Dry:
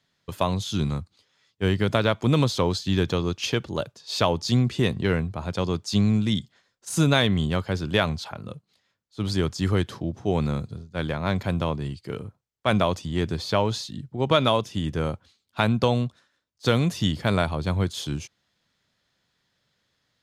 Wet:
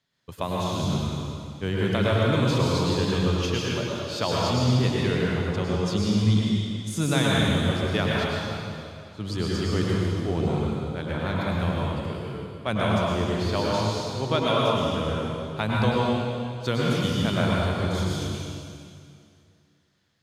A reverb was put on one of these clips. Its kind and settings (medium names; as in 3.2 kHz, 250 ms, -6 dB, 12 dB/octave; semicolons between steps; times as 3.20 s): plate-style reverb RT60 2.4 s, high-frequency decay 0.95×, pre-delay 90 ms, DRR -5 dB; trim -6 dB